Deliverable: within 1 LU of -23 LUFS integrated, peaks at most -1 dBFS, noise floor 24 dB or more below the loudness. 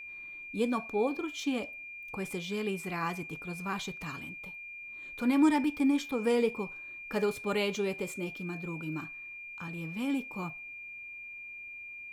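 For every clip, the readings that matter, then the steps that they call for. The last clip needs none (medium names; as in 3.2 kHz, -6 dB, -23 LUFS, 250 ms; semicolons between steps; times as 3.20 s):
steady tone 2.4 kHz; tone level -42 dBFS; loudness -33.5 LUFS; peak level -14.5 dBFS; loudness target -23.0 LUFS
-> band-stop 2.4 kHz, Q 30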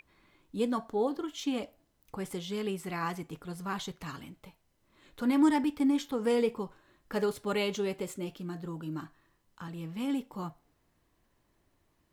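steady tone not found; loudness -33.0 LUFS; peak level -15.0 dBFS; loudness target -23.0 LUFS
-> trim +10 dB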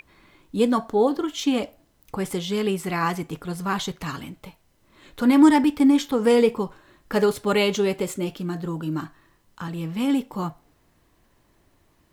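loudness -23.0 LUFS; peak level -5.0 dBFS; noise floor -63 dBFS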